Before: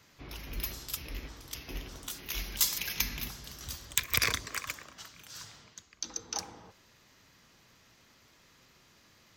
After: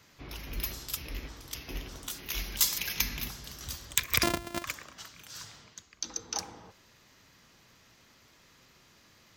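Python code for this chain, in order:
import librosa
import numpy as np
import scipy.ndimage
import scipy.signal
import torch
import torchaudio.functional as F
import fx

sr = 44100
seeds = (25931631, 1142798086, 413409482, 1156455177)

y = fx.sample_sort(x, sr, block=128, at=(4.23, 4.64))
y = y * 10.0 ** (1.5 / 20.0)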